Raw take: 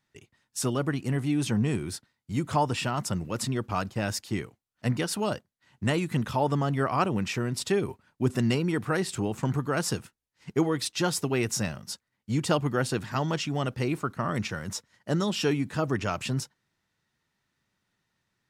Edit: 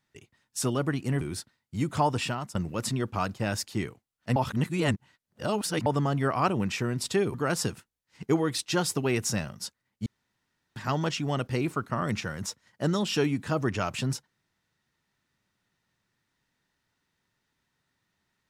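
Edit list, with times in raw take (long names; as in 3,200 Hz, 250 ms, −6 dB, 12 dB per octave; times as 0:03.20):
0:01.21–0:01.77: remove
0:02.81–0:03.11: fade out, to −16.5 dB
0:04.92–0:06.42: reverse
0:07.90–0:09.61: remove
0:12.33–0:13.03: fill with room tone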